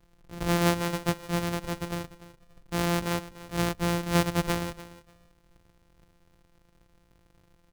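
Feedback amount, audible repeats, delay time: 18%, 2, 0.294 s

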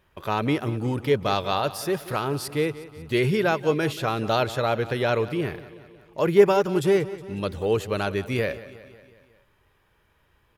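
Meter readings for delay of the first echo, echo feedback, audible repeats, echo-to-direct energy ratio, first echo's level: 0.182 s, 58%, 4, -14.5 dB, -16.5 dB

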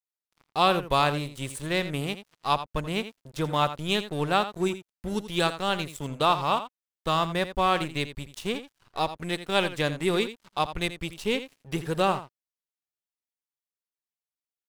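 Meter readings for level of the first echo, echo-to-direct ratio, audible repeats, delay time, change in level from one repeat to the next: -12.5 dB, -12.5 dB, 1, 83 ms, no steady repeat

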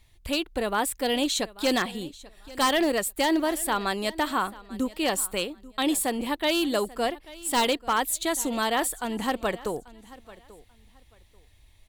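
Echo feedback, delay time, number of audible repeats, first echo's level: 22%, 0.838 s, 2, -20.0 dB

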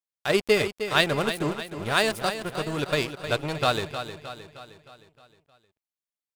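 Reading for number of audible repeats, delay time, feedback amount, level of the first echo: 5, 0.31 s, 52%, -10.0 dB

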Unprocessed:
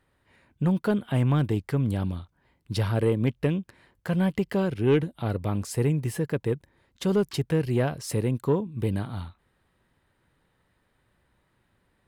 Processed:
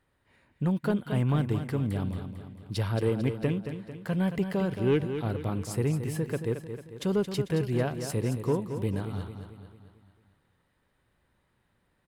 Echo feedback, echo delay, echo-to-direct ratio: 51%, 0.223 s, -7.5 dB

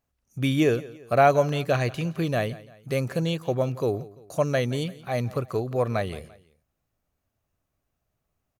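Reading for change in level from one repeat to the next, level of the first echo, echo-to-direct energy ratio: -7.0 dB, -19.5 dB, -18.5 dB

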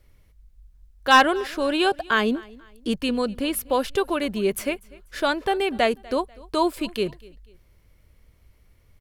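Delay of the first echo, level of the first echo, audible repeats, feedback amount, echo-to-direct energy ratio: 0.245 s, -23.0 dB, 2, 36%, -22.5 dB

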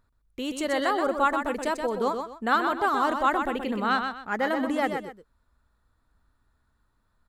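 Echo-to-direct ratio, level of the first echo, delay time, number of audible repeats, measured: -6.0 dB, -6.5 dB, 0.126 s, 2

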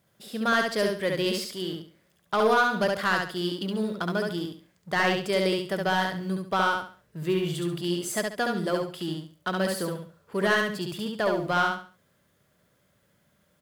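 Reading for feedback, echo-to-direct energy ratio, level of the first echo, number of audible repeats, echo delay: 29%, -2.5 dB, -3.0 dB, 3, 69 ms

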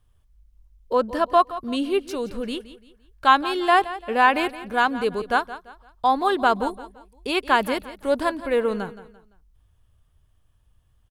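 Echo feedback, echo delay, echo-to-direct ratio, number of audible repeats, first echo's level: 35%, 0.171 s, -14.5 dB, 3, -15.0 dB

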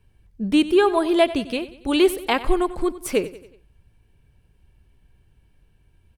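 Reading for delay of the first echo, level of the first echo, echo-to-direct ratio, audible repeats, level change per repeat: 93 ms, -16.0 dB, -15.0 dB, 4, -6.0 dB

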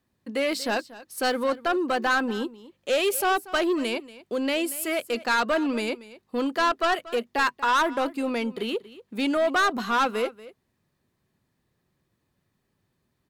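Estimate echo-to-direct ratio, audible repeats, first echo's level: -18.0 dB, 1, -18.0 dB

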